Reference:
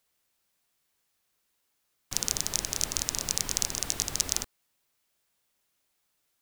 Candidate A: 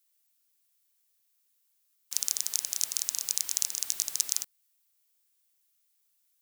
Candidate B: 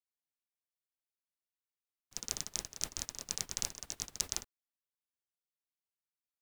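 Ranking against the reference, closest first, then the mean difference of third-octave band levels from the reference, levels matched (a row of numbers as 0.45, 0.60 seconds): B, A; 4.5, 11.5 decibels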